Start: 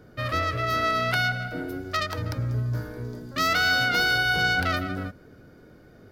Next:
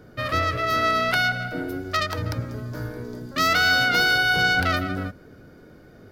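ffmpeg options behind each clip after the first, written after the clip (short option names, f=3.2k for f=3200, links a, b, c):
-af "bandreject=f=60:t=h:w=6,bandreject=f=120:t=h:w=6,volume=3dB"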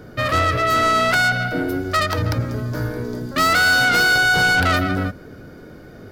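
-af "asoftclip=type=tanh:threshold=-19.5dB,volume=8dB"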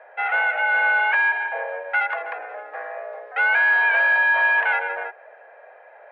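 -af "highpass=f=390:t=q:w=0.5412,highpass=f=390:t=q:w=1.307,lowpass=f=2.4k:t=q:w=0.5176,lowpass=f=2.4k:t=q:w=0.7071,lowpass=f=2.4k:t=q:w=1.932,afreqshift=190,volume=-1.5dB"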